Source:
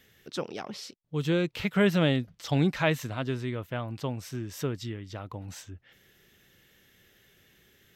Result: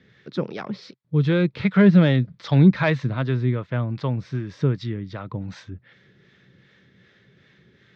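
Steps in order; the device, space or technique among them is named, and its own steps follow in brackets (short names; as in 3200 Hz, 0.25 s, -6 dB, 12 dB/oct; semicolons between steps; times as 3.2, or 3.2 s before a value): guitar amplifier with harmonic tremolo (harmonic tremolo 2.6 Hz, depth 50%, crossover 520 Hz; soft clip -15 dBFS, distortion -21 dB; speaker cabinet 87–4100 Hz, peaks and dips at 130 Hz +8 dB, 190 Hz +6 dB, 750 Hz -6 dB, 2900 Hz -10 dB); gain +8.5 dB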